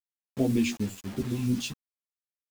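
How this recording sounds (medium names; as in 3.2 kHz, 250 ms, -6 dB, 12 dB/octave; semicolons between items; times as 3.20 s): phasing stages 2, 2.7 Hz, lowest notch 510–1900 Hz; a quantiser's noise floor 8-bit, dither none; a shimmering, thickened sound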